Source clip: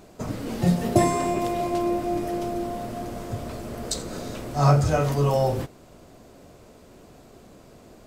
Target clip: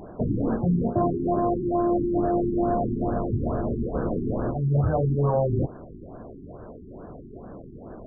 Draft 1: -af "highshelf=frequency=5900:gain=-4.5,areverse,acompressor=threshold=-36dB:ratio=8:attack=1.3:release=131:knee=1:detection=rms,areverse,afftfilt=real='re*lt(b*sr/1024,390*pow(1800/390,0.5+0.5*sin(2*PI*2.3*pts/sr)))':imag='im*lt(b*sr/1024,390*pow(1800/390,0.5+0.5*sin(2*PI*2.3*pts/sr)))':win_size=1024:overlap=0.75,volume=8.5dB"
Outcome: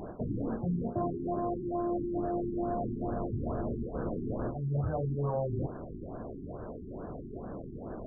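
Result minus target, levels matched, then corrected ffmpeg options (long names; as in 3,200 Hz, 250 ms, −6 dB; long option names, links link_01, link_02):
downward compressor: peak gain reduction +9 dB
-af "highshelf=frequency=5900:gain=-4.5,areverse,acompressor=threshold=-25.5dB:ratio=8:attack=1.3:release=131:knee=1:detection=rms,areverse,afftfilt=real='re*lt(b*sr/1024,390*pow(1800/390,0.5+0.5*sin(2*PI*2.3*pts/sr)))':imag='im*lt(b*sr/1024,390*pow(1800/390,0.5+0.5*sin(2*PI*2.3*pts/sr)))':win_size=1024:overlap=0.75,volume=8.5dB"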